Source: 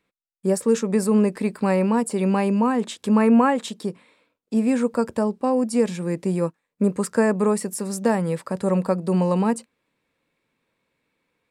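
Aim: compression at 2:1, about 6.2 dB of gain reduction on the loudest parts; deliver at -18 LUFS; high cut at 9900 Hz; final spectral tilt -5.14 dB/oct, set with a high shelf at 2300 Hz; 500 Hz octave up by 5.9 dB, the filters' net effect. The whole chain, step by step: LPF 9900 Hz; bell 500 Hz +6.5 dB; high shelf 2300 Hz +6 dB; compressor 2:1, threshold -21 dBFS; gain +5.5 dB

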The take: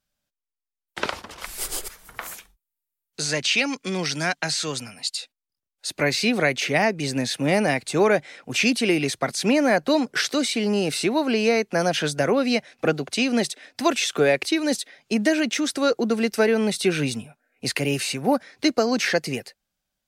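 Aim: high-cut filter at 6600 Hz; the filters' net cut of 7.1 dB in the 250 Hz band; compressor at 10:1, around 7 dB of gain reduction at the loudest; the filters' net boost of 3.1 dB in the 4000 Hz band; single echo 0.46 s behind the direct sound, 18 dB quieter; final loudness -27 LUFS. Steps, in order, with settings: LPF 6600 Hz; bell 250 Hz -9 dB; bell 4000 Hz +4.5 dB; compressor 10:1, threshold -23 dBFS; echo 0.46 s -18 dB; gain +1 dB

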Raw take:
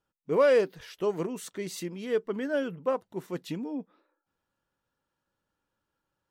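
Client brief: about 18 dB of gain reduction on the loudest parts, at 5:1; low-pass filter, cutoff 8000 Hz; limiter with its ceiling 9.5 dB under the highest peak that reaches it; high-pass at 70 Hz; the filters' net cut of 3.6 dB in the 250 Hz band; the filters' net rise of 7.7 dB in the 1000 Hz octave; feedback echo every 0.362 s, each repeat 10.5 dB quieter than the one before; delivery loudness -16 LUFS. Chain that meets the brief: HPF 70 Hz; LPF 8000 Hz; bell 250 Hz -5.5 dB; bell 1000 Hz +9 dB; compressor 5:1, threshold -36 dBFS; limiter -34.5 dBFS; feedback echo 0.362 s, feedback 30%, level -10.5 dB; gain +27.5 dB

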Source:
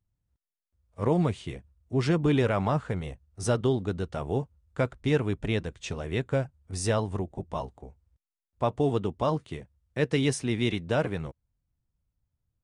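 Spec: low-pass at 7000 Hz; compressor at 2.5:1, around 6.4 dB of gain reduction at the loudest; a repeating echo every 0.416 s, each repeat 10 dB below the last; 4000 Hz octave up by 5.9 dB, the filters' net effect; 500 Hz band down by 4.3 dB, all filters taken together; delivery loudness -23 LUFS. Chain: LPF 7000 Hz; bell 500 Hz -5.5 dB; bell 4000 Hz +8 dB; compressor 2.5:1, threshold -31 dBFS; feedback echo 0.416 s, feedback 32%, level -10 dB; gain +12 dB

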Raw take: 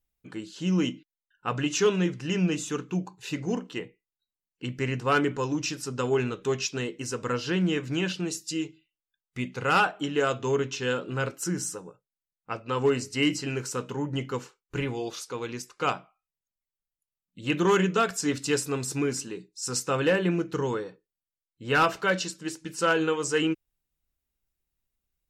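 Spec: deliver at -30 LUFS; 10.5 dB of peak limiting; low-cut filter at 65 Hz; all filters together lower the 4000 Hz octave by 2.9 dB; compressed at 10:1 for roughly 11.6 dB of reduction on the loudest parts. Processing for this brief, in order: HPF 65 Hz; bell 4000 Hz -4.5 dB; compressor 10:1, threshold -30 dBFS; gain +8 dB; limiter -20.5 dBFS

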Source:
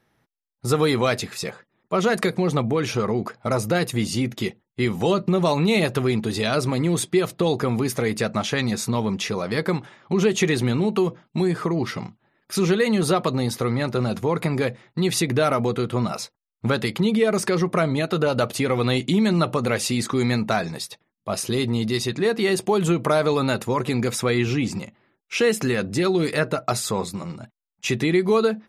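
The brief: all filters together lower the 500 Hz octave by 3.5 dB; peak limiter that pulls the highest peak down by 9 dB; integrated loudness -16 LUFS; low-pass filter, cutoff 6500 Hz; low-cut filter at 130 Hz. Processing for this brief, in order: HPF 130 Hz; LPF 6500 Hz; bell 500 Hz -4.5 dB; gain +11.5 dB; limiter -5 dBFS

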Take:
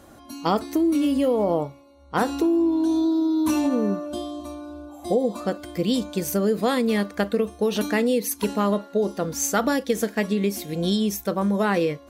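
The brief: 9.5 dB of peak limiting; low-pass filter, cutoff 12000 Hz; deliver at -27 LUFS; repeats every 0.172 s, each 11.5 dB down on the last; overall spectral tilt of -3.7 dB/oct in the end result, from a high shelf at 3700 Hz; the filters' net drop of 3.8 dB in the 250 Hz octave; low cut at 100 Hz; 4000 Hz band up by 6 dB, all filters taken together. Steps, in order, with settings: HPF 100 Hz; LPF 12000 Hz; bell 250 Hz -5 dB; high shelf 3700 Hz +4 dB; bell 4000 Hz +5 dB; limiter -17.5 dBFS; feedback echo 0.172 s, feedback 27%, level -11.5 dB

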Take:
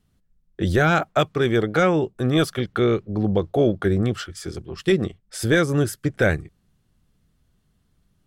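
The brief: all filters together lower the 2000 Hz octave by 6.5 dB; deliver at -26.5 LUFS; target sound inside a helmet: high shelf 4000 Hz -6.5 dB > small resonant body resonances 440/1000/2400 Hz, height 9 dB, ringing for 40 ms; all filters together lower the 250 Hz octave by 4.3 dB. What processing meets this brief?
bell 250 Hz -6.5 dB; bell 2000 Hz -8 dB; high shelf 4000 Hz -6.5 dB; small resonant body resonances 440/1000/2400 Hz, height 9 dB, ringing for 40 ms; gain -5 dB

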